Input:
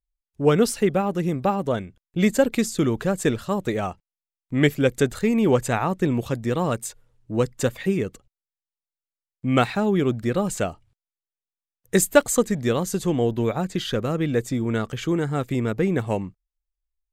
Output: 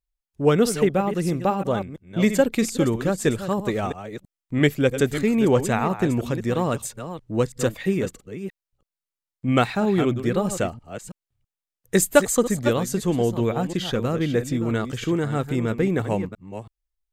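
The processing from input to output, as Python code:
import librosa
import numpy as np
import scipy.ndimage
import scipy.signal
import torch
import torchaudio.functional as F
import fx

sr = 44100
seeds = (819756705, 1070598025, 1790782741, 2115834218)

y = fx.reverse_delay(x, sr, ms=327, wet_db=-10)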